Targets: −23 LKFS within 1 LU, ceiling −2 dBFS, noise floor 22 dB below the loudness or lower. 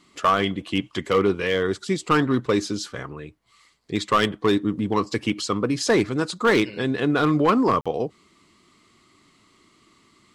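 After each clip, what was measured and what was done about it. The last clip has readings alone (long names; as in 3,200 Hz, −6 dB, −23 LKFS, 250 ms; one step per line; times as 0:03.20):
share of clipped samples 0.7%; peaks flattened at −12.0 dBFS; number of dropouts 1; longest dropout 46 ms; integrated loudness −22.5 LKFS; sample peak −12.0 dBFS; target loudness −23.0 LKFS
→ clipped peaks rebuilt −12 dBFS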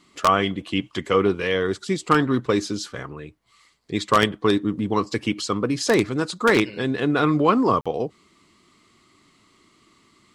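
share of clipped samples 0.0%; number of dropouts 1; longest dropout 46 ms
→ repair the gap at 0:07.81, 46 ms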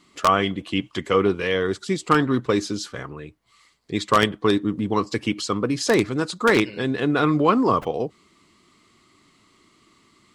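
number of dropouts 0; integrated loudness −22.0 LKFS; sample peak −3.0 dBFS; target loudness −23.0 LKFS
→ level −1 dB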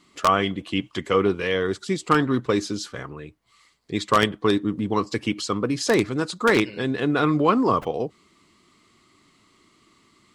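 integrated loudness −23.0 LKFS; sample peak −4.0 dBFS; background noise floor −61 dBFS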